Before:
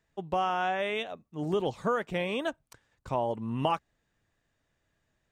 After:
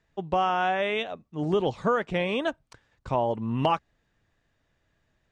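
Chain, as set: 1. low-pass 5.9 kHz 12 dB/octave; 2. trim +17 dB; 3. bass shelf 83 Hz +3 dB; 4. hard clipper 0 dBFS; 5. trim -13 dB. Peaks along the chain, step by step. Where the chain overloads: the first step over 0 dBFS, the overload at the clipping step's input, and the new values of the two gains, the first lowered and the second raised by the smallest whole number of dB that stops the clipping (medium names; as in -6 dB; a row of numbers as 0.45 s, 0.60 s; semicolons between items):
-14.0 dBFS, +3.0 dBFS, +3.5 dBFS, 0.0 dBFS, -13.0 dBFS; step 2, 3.5 dB; step 2 +13 dB, step 5 -9 dB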